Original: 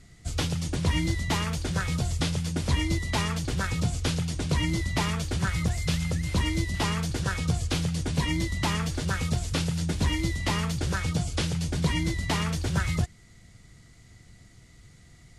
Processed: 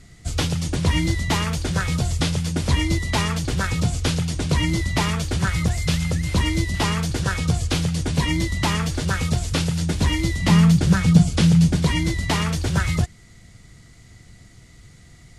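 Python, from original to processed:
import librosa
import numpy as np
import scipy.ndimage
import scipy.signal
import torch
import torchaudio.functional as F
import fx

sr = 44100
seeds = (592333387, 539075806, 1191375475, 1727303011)

y = fx.peak_eq(x, sr, hz=180.0, db=13.5, octaves=0.66, at=(10.42, 11.76))
y = F.gain(torch.from_numpy(y), 5.5).numpy()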